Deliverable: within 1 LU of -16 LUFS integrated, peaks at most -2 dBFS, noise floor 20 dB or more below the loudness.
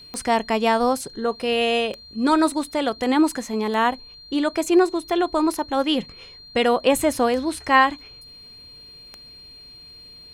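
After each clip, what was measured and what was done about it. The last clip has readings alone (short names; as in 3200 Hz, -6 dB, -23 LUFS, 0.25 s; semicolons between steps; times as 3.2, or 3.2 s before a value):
clicks 6; steady tone 4200 Hz; tone level -42 dBFS; loudness -21.5 LUFS; peak -3.0 dBFS; loudness target -16.0 LUFS
-> de-click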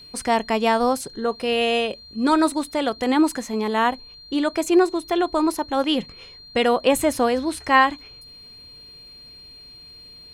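clicks 0; steady tone 4200 Hz; tone level -42 dBFS
-> notch 4200 Hz, Q 30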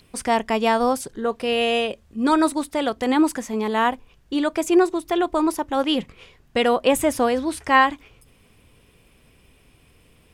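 steady tone none; loudness -21.5 LUFS; peak -3.5 dBFS; loudness target -16.0 LUFS
-> gain +5.5 dB; limiter -2 dBFS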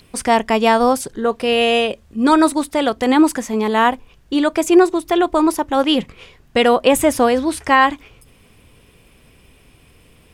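loudness -16.0 LUFS; peak -2.0 dBFS; noise floor -51 dBFS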